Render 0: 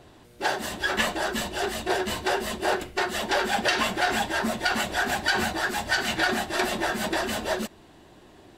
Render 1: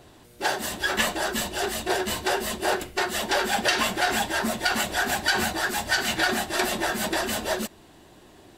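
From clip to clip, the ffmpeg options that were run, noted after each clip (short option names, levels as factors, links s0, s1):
-af "highshelf=f=6500:g=8"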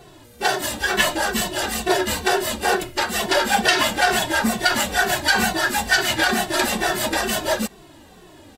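-filter_complex "[0:a]asplit=2[s0][s1];[s1]adelay=2.2,afreqshift=-2.2[s2];[s0][s2]amix=inputs=2:normalize=1,volume=2.51"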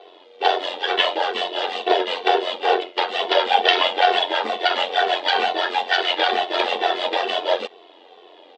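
-af "tremolo=f=89:d=0.667,highpass=f=390:w=0.5412,highpass=f=390:w=1.3066,equalizer=f=460:t=q:w=4:g=8,equalizer=f=750:t=q:w=4:g=5,equalizer=f=1600:t=q:w=4:g=-7,equalizer=f=3300:t=q:w=4:g=8,lowpass=f=3800:w=0.5412,lowpass=f=3800:w=1.3066,volume=1.33"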